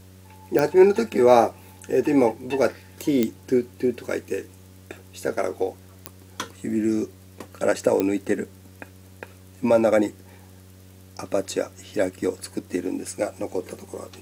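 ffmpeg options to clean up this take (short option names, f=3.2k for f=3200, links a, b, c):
-af "adeclick=t=4,bandreject=f=93.6:t=h:w=4,bandreject=f=187.2:t=h:w=4,bandreject=f=280.8:t=h:w=4,bandreject=f=374.4:t=h:w=4,bandreject=f=468:t=h:w=4,bandreject=f=561.6:t=h:w=4"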